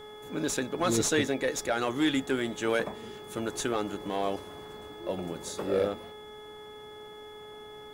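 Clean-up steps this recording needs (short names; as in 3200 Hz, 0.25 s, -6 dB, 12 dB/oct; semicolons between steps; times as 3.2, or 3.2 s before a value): de-hum 423.2 Hz, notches 5; notch 3400 Hz, Q 30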